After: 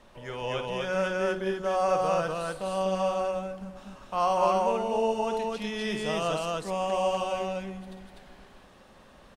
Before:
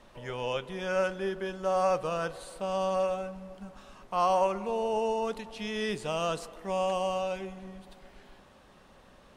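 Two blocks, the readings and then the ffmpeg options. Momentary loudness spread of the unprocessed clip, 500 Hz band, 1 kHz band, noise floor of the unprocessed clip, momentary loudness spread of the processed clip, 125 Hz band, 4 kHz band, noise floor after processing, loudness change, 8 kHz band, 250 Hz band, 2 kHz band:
14 LU, +2.5 dB, +3.0 dB, -57 dBFS, 14 LU, +3.0 dB, +3.0 dB, -55 dBFS, +2.5 dB, +3.0 dB, +3.5 dB, +3.0 dB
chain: -af "aecho=1:1:52.48|247.8:0.316|0.891"

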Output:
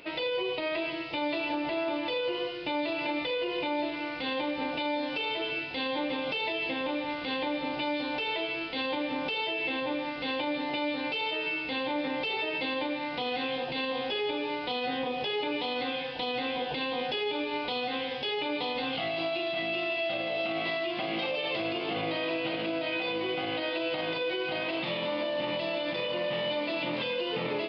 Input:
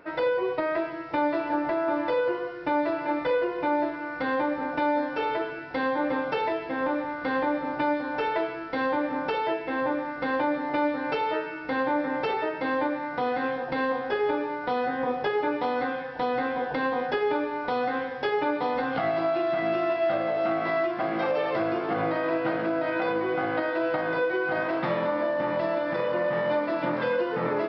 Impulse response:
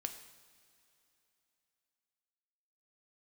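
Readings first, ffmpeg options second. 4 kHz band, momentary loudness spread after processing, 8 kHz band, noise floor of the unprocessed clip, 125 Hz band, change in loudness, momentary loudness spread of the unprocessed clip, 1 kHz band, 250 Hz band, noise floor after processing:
+10.5 dB, 2 LU, no reading, -35 dBFS, -5.0 dB, -3.5 dB, 3 LU, -7.0 dB, -4.5 dB, -36 dBFS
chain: -af "highshelf=f=2100:t=q:w=3:g=10.5,alimiter=limit=0.0708:level=0:latency=1:release=105,aresample=11025,aresample=44100"

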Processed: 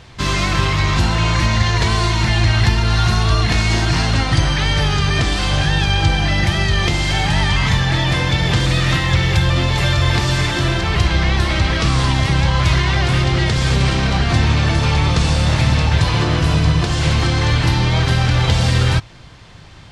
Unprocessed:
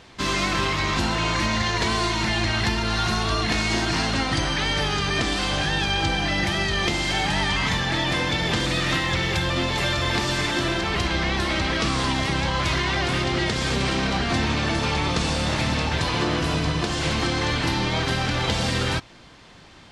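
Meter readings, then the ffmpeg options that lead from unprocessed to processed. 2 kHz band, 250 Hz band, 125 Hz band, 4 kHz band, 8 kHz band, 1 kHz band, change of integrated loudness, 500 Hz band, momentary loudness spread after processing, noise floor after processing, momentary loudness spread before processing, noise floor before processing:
+4.0 dB, +4.5 dB, +12.5 dB, +4.0 dB, +4.0 dB, +4.0 dB, +6.5 dB, +3.0 dB, 2 LU, -38 dBFS, 1 LU, -47 dBFS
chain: -af "lowshelf=f=170:t=q:w=1.5:g=7.5,volume=1.58"

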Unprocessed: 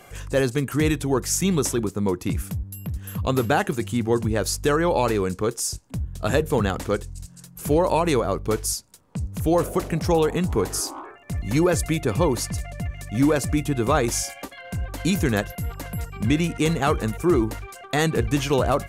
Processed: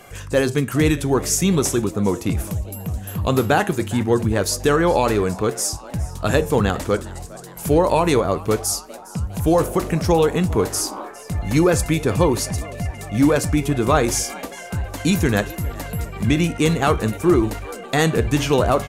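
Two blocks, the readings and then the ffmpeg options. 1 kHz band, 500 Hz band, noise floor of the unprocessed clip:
+3.5 dB, +3.5 dB, -47 dBFS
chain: -filter_complex "[0:a]flanger=delay=9.8:depth=3.3:regen=-80:speed=0.47:shape=triangular,asplit=2[s0][s1];[s1]asplit=5[s2][s3][s4][s5][s6];[s2]adelay=409,afreqshift=130,volume=0.0944[s7];[s3]adelay=818,afreqshift=260,volume=0.0569[s8];[s4]adelay=1227,afreqshift=390,volume=0.0339[s9];[s5]adelay=1636,afreqshift=520,volume=0.0204[s10];[s6]adelay=2045,afreqshift=650,volume=0.0123[s11];[s7][s8][s9][s10][s11]amix=inputs=5:normalize=0[s12];[s0][s12]amix=inputs=2:normalize=0,volume=2.51"

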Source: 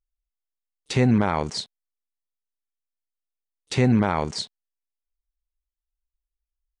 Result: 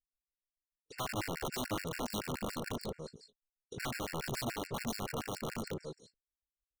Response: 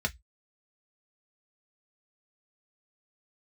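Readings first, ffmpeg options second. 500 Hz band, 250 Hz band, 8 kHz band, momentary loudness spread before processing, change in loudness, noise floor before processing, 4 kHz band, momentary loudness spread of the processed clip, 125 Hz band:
-11.0 dB, -16.0 dB, -4.0 dB, 13 LU, -16.0 dB, under -85 dBFS, -8.5 dB, 12 LU, -17.0 dB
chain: -af "tremolo=f=51:d=0.462,lowshelf=f=630:t=q:w=3:g=9,volume=5.01,asoftclip=hard,volume=0.2,agate=range=0.1:threshold=0.0112:ratio=16:detection=peak,flanger=delay=18.5:depth=3.7:speed=0.67,aecho=1:1:540|945|1249|1477|1647:0.631|0.398|0.251|0.158|0.1,areverse,acompressor=threshold=0.02:ratio=6,areverse,equalizer=f=3000:t=o:w=2.3:g=-4.5,aeval=exprs='(mod(35.5*val(0)+1,2)-1)/35.5':c=same,afftfilt=real='re*gt(sin(2*PI*7*pts/sr)*(1-2*mod(floor(b*sr/1024/1400),2)),0)':imag='im*gt(sin(2*PI*7*pts/sr)*(1-2*mod(floor(b*sr/1024/1400),2)),0)':win_size=1024:overlap=0.75,volume=1.12"

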